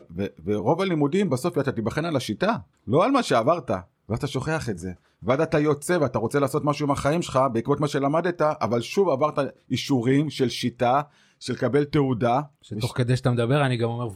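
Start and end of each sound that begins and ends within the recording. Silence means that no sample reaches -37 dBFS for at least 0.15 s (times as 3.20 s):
2.87–3.81 s
4.09–4.93 s
5.22–9.50 s
9.71–11.03 s
11.41–12.46 s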